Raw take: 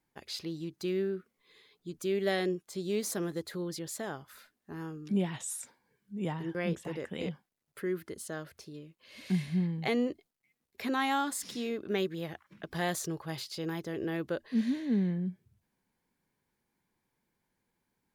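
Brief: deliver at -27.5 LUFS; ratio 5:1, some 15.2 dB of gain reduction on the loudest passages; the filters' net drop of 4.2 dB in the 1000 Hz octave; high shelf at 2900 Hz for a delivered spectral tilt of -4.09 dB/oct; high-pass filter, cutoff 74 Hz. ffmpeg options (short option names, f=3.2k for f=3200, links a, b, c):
-af "highpass=74,equalizer=f=1k:t=o:g=-6.5,highshelf=f=2.9k:g=4.5,acompressor=threshold=-43dB:ratio=5,volume=18.5dB"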